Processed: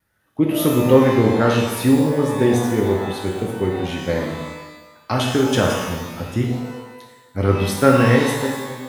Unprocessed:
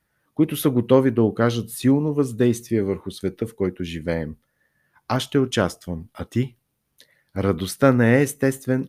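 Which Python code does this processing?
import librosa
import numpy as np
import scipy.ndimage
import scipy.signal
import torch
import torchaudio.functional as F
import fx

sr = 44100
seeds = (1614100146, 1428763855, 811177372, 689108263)

y = fx.fade_out_tail(x, sr, length_s=0.97)
y = fx.vibrato(y, sr, rate_hz=0.32, depth_cents=5.3)
y = fx.rev_shimmer(y, sr, seeds[0], rt60_s=1.1, semitones=12, shimmer_db=-8, drr_db=-1.0)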